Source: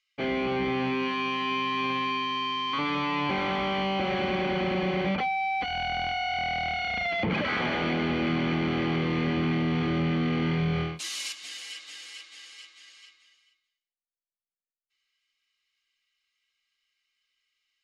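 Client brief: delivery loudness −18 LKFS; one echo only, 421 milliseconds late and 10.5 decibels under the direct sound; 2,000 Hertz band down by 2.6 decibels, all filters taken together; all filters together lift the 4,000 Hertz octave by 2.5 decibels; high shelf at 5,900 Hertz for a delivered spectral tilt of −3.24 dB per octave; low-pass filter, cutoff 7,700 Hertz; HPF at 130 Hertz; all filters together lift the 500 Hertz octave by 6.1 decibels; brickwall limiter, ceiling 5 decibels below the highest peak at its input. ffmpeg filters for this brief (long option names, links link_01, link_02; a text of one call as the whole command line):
ffmpeg -i in.wav -af "highpass=130,lowpass=7700,equalizer=frequency=500:width_type=o:gain=8.5,equalizer=frequency=2000:width_type=o:gain=-5,equalizer=frequency=4000:width_type=o:gain=9,highshelf=frequency=5900:gain=-8.5,alimiter=limit=-19.5dB:level=0:latency=1,aecho=1:1:421:0.299,volume=9.5dB" out.wav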